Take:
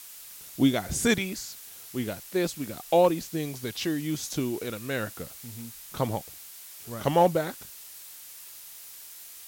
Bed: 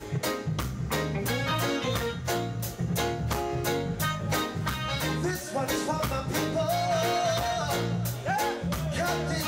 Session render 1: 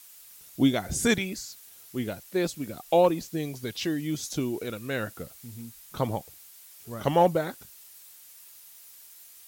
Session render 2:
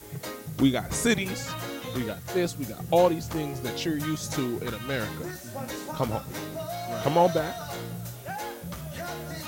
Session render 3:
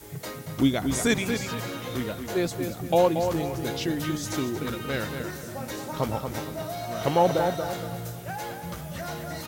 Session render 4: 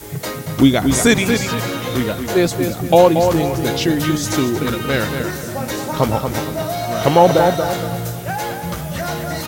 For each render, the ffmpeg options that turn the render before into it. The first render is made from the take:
-af "afftdn=nr=7:nf=-46"
-filter_complex "[1:a]volume=-7.5dB[a];[0:a][a]amix=inputs=2:normalize=0"
-filter_complex "[0:a]asplit=2[a][b];[b]adelay=232,lowpass=f=3.7k:p=1,volume=-6.5dB,asplit=2[c][d];[d]adelay=232,lowpass=f=3.7k:p=1,volume=0.36,asplit=2[e][f];[f]adelay=232,lowpass=f=3.7k:p=1,volume=0.36,asplit=2[g][h];[h]adelay=232,lowpass=f=3.7k:p=1,volume=0.36[i];[a][c][e][g][i]amix=inputs=5:normalize=0"
-af "volume=11dB,alimiter=limit=-1dB:level=0:latency=1"

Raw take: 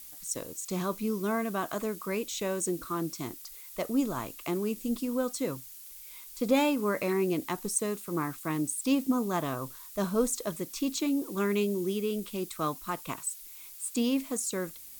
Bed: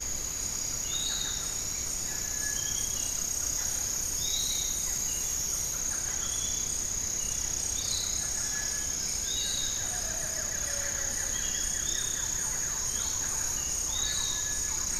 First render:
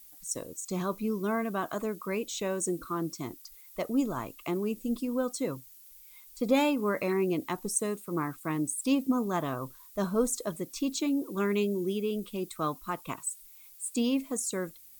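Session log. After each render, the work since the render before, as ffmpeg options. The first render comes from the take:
-af "afftdn=nr=9:nf=-47"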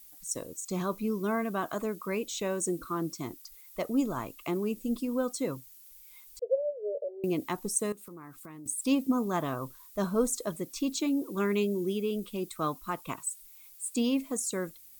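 -filter_complex "[0:a]asettb=1/sr,asplit=3[a][b][c];[a]atrim=end=6.394[d];[b]atrim=start=6.39:end=7.24,asetpts=PTS-STARTPTS,afade=t=in:d=0.004:c=qsin,afade=t=out:st=0.846:d=0.004:c=qsin,asuperpass=centerf=520:order=12:qfactor=2.1[e];[c]atrim=start=7.236[f];[d][e]acrossfade=d=0.004:c1=hsin:c2=qsin[g];[g][f]acrossfade=d=0.004:c1=qsin:c2=hsin,asettb=1/sr,asplit=3[h][i][j];[h]atrim=end=7.924[k];[i]atrim=start=7.92:end=8.66,asetpts=PTS-STARTPTS,afade=t=in:d=0.004:c=qsin,afade=t=out:st=0.736:d=0.004:c=qsin,acompressor=threshold=-43dB:ratio=8:attack=3.2:release=140:knee=1:detection=peak[l];[j]atrim=start=8.656[m];[k][l]acrossfade=d=0.004:c1=hsin:c2=qsin[n];[n][m]acrossfade=d=0.004:c1=qsin:c2=hsin"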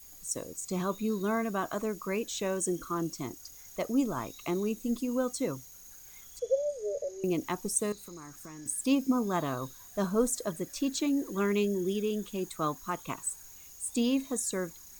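-filter_complex "[1:a]volume=-23dB[a];[0:a][a]amix=inputs=2:normalize=0"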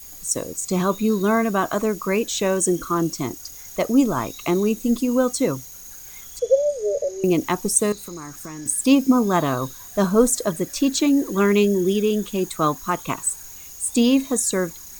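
-af "volume=11dB"

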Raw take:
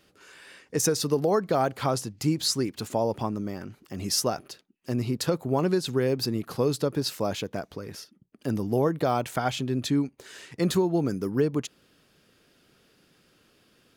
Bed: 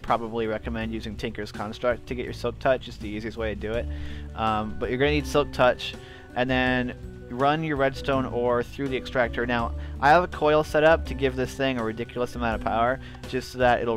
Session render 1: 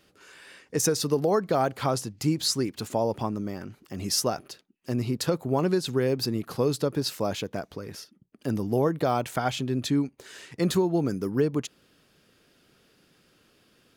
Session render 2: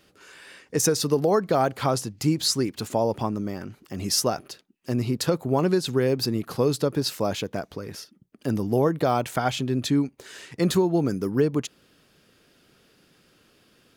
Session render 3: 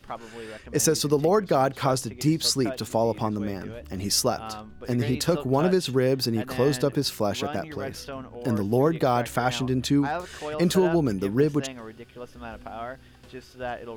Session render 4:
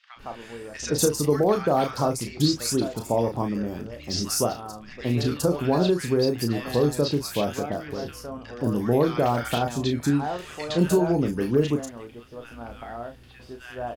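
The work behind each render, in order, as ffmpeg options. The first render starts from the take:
-af anull
-af "volume=2.5dB"
-filter_complex "[1:a]volume=-12.5dB[a];[0:a][a]amix=inputs=2:normalize=0"
-filter_complex "[0:a]asplit=2[a][b];[b]adelay=34,volume=-7dB[c];[a][c]amix=inputs=2:normalize=0,acrossover=split=1400|5300[d][e][f];[d]adelay=160[g];[f]adelay=190[h];[g][e][h]amix=inputs=3:normalize=0"

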